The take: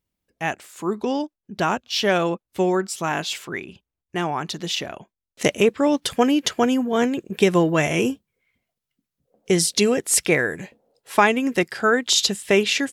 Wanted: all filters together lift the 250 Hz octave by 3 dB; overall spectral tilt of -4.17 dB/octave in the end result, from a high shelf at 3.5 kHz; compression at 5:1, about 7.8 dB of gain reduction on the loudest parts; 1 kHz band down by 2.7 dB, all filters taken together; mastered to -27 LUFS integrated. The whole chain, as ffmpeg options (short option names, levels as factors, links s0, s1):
-af "equalizer=f=250:t=o:g=4,equalizer=f=1000:t=o:g=-3.5,highshelf=f=3500:g=-5,acompressor=threshold=0.112:ratio=5,volume=0.794"